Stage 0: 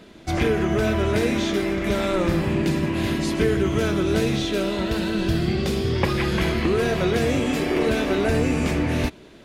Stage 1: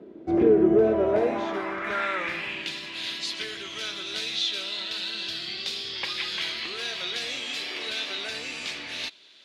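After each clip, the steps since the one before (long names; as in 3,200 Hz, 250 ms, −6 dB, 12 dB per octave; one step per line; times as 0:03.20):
tape wow and flutter 27 cents
band-pass filter sweep 370 Hz → 3,900 Hz, 0:00.68–0:02.82
level +6.5 dB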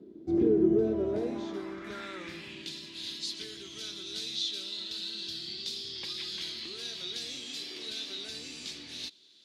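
flat-topped bell 1,200 Hz −12.5 dB 2.8 octaves
level −3 dB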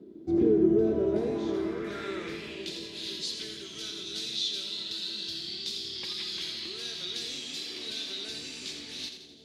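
echo with a time of its own for lows and highs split 700 Hz, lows 513 ms, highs 84 ms, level −8 dB
level +1.5 dB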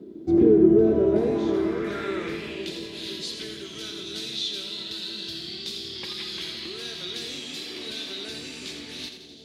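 dynamic equaliser 5,500 Hz, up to −7 dB, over −50 dBFS, Q 0.7
level +6.5 dB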